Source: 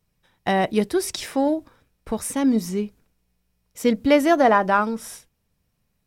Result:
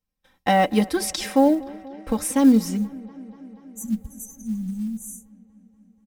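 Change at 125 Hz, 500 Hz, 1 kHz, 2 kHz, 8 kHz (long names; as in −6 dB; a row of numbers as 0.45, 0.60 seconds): +1.5, −4.5, −3.0, −5.5, +2.0 decibels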